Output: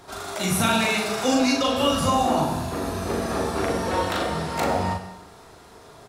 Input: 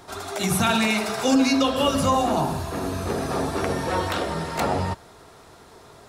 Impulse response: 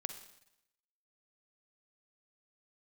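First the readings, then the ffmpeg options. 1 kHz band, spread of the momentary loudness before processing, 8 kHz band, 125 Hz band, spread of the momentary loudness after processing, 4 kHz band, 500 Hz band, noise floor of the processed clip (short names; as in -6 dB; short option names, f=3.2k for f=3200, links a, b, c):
+0.5 dB, 8 LU, +0.5 dB, -1.0 dB, 8 LU, +1.0 dB, +0.5 dB, -48 dBFS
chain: -filter_complex "[0:a]asplit=2[a][b];[b]adelay=39,volume=-3dB[c];[a][c]amix=inputs=2:normalize=0[d];[1:a]atrim=start_sample=2205,asetrate=41895,aresample=44100[e];[d][e]afir=irnorm=-1:irlink=0"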